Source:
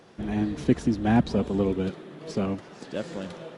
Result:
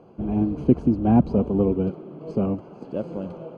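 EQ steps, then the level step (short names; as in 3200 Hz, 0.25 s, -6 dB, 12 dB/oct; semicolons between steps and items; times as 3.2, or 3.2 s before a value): running mean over 24 samples; +4.5 dB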